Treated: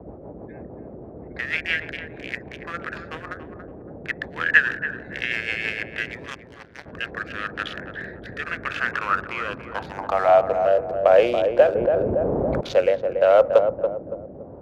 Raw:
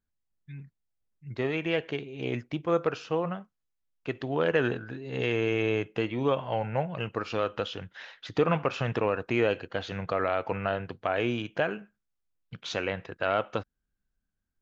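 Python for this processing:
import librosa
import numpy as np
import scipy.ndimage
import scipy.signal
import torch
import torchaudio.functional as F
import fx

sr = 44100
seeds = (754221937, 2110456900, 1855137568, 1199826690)

p1 = fx.wiener(x, sr, points=15)
p2 = fx.level_steps(p1, sr, step_db=11)
p3 = p1 + (p2 * librosa.db_to_amplitude(-1.5))
p4 = fx.filter_sweep_highpass(p3, sr, from_hz=1700.0, to_hz=550.0, start_s=8.67, end_s=10.79, q=6.0)
p5 = fx.dmg_noise_band(p4, sr, seeds[0], low_hz=48.0, high_hz=640.0, level_db=-41.0)
p6 = fx.rotary_switch(p5, sr, hz=6.3, then_hz=0.85, switch_at_s=6.5)
p7 = fx.power_curve(p6, sr, exponent=2.0, at=(6.26, 6.86))
p8 = p7 + fx.echo_filtered(p7, sr, ms=282, feedback_pct=44, hz=830.0, wet_db=-5.5, dry=0)
p9 = fx.env_flatten(p8, sr, amount_pct=70, at=(11.75, 12.61))
y = p9 * librosa.db_to_amplitude(2.5)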